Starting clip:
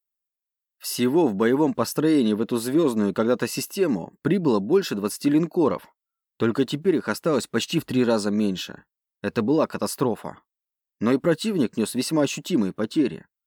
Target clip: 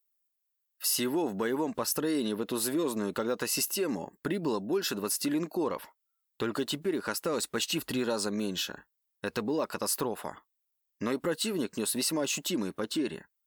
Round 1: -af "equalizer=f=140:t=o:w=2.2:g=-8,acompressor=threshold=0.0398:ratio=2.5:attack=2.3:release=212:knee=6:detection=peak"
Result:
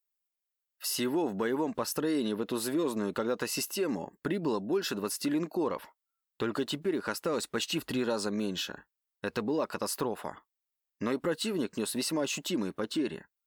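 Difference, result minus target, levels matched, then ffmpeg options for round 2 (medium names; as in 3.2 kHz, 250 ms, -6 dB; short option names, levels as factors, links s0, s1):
8 kHz band -4.0 dB
-af "equalizer=f=140:t=o:w=2.2:g=-8,acompressor=threshold=0.0398:ratio=2.5:attack=2.3:release=212:knee=6:detection=peak,highshelf=f=6200:g=7.5"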